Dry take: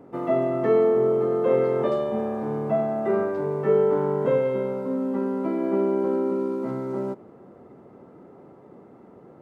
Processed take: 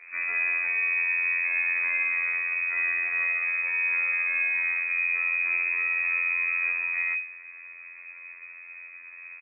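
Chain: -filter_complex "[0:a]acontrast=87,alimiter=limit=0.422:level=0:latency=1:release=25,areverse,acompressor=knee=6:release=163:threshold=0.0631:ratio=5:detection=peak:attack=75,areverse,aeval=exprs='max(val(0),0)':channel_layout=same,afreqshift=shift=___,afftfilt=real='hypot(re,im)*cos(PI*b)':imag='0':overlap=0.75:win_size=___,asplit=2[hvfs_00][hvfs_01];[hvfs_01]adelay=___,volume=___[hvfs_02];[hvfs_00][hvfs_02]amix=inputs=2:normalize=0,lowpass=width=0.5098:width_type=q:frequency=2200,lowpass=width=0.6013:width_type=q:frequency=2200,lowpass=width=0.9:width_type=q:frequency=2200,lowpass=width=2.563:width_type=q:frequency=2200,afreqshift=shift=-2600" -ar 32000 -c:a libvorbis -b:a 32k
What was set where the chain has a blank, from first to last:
-83, 2048, 13, 0.447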